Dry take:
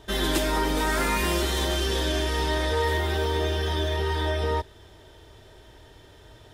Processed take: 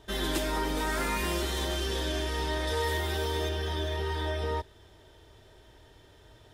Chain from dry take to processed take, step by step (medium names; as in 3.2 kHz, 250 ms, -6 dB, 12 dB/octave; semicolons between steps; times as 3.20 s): 2.67–3.49 s: treble shelf 4.4 kHz +7.5 dB; trim -5.5 dB